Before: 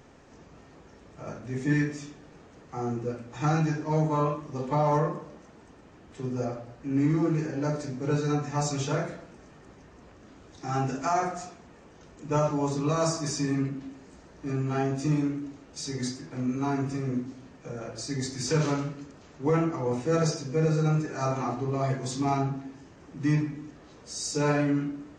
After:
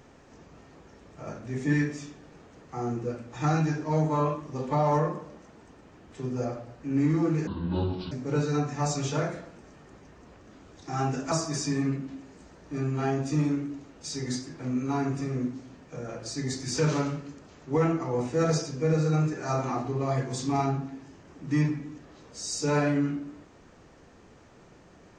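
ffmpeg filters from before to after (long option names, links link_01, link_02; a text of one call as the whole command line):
ffmpeg -i in.wav -filter_complex "[0:a]asplit=4[link_01][link_02][link_03][link_04];[link_01]atrim=end=7.474[link_05];[link_02]atrim=start=7.47:end=7.87,asetpts=PTS-STARTPTS,asetrate=27342,aresample=44100[link_06];[link_03]atrim=start=7.866:end=11.072[link_07];[link_04]atrim=start=13.038[link_08];[link_05][link_06]acrossfade=duration=0.004:curve1=hsin:curve2=hsin[link_09];[link_09][link_07]acrossfade=duration=0.004:curve1=hsin:curve2=hsin[link_10];[link_10][link_08]acrossfade=duration=0.004:curve1=hsin:curve2=hsin" out.wav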